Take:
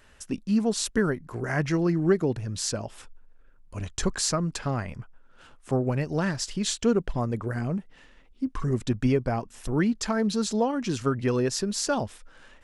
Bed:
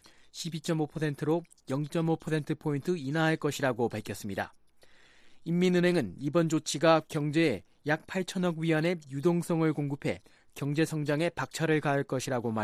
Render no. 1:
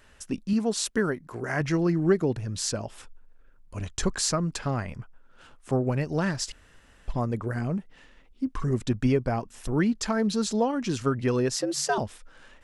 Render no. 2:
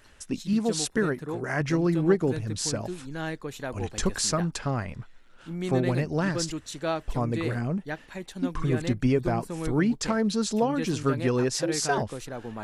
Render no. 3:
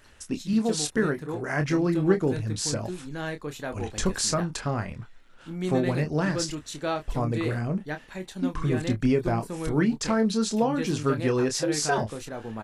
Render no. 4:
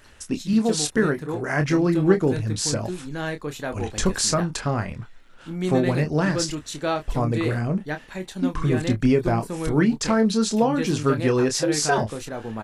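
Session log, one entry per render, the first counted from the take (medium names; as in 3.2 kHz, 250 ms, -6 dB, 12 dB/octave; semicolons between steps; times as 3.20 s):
0.53–1.61 s: bass shelf 110 Hz -11 dB; 6.52–7.08 s: room tone; 11.56–11.98 s: frequency shift +130 Hz
add bed -6 dB
doubling 27 ms -8 dB
trim +4 dB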